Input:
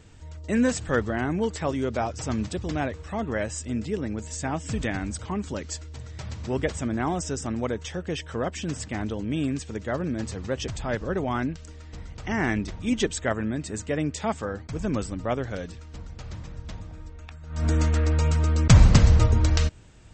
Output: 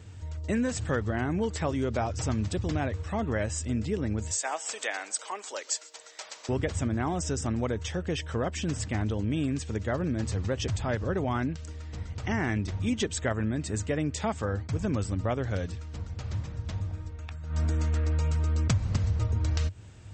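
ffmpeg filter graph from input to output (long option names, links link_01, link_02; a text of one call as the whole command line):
ffmpeg -i in.wav -filter_complex "[0:a]asettb=1/sr,asplit=3[link_01][link_02][link_03];[link_01]atrim=end=4.314[link_04];[link_02]atrim=start=4.31:end=6.49,asetpts=PTS-STARTPTS,afade=type=in:duration=0.004:curve=qsin,afade=type=out:start_time=2.176:duration=0.004:curve=qsin,highpass=frequency=510:width=0.5412,highpass=frequency=510:width=1.3066,aemphasis=mode=production:type=cd,aecho=1:1:135:0.0708,atrim=end_sample=96138[link_05];[link_03]atrim=start=6.486[link_06];[link_04][link_05]acrossfade=duration=0.004:curve1=hsin:curve2=qsin[link_07];[link_07][link_06]acrossfade=duration=0.004:curve1=qsin:curve2=hsin,highpass=54,equalizer=frequency=95:width_type=o:width=0.46:gain=12,acompressor=threshold=-24dB:ratio=8" out.wav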